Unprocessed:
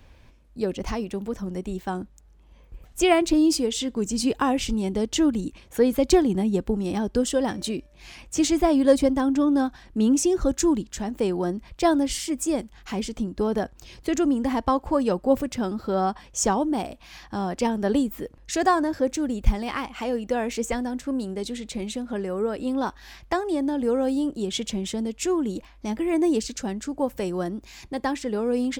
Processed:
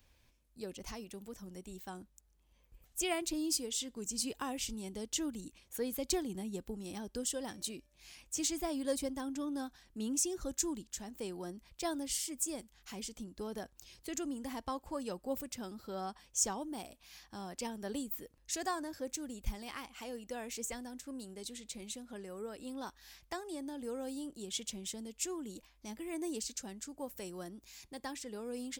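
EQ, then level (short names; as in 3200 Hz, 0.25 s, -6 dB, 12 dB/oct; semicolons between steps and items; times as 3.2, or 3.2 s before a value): pre-emphasis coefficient 0.8; -4.0 dB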